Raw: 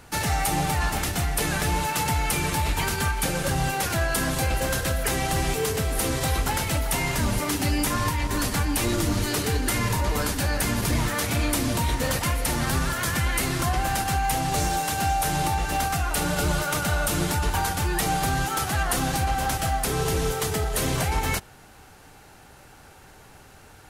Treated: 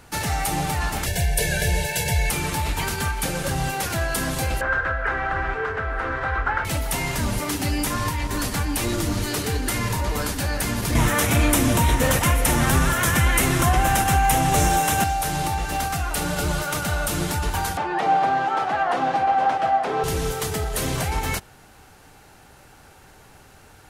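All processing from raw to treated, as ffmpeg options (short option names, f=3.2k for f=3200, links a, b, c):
-filter_complex "[0:a]asettb=1/sr,asplit=3[a][b][c];[a]atrim=end=1.064[d];[b]atrim=start=1.06:end=2.3,asetpts=PTS-STARTPTS,afade=t=in:d=0.004:c=qsin,afade=t=out:st=1.236:d=0.004:c=qsin,asuperstop=centerf=1200:order=12:qfactor=2.4,aecho=1:1:1.8:0.89,atrim=end_sample=54684[e];[c]atrim=start=2.296[f];[d][e]acrossfade=d=0.004:c1=hsin:c2=qsin[g];[g][f]acrossfade=d=0.004:c1=qsin:c2=hsin,asettb=1/sr,asplit=3[h][i][j];[h]atrim=end=4.614[k];[i]atrim=start=4.61:end=6.65,asetpts=PTS-STARTPTS,afade=t=in:d=0.004:c=qsin,afade=t=out:st=2.036:d=0.004:c=qsin,lowpass=f=1.5k:t=q:w=4.2,equalizer=f=180:t=o:w=1.5:g=-12[l];[j]atrim=start=6.646[m];[k][l]acrossfade=d=0.004:c1=hsin:c2=qsin[n];[n][m]acrossfade=d=0.004:c1=qsin:c2=hsin,asettb=1/sr,asplit=3[o][p][q];[o]atrim=end=10.954[r];[p]atrim=start=10.95:end=15.04,asetpts=PTS-STARTPTS,afade=t=in:d=0.004:c=qsin,afade=t=out:st=4.086:d=0.004:c=qsin,equalizer=f=4.5k:w=3.8:g=-9,acontrast=55[s];[q]atrim=start=15.036[t];[r][s]acrossfade=d=0.004:c1=hsin:c2=qsin[u];[u][t]acrossfade=d=0.004:c1=qsin:c2=hsin,asettb=1/sr,asplit=3[v][w][x];[v]atrim=end=17.774[y];[w]atrim=start=17.77:end=20.04,asetpts=PTS-STARTPTS,afade=t=in:d=0.004:c=qsin,afade=t=out:st=2.266:d=0.004:c=qsin,highpass=250,lowpass=2.7k,equalizer=f=740:w=1.1:g=9[z];[x]atrim=start=20.036[aa];[y][z]acrossfade=d=0.004:c1=hsin:c2=qsin[ab];[ab][aa]acrossfade=d=0.004:c1=qsin:c2=hsin"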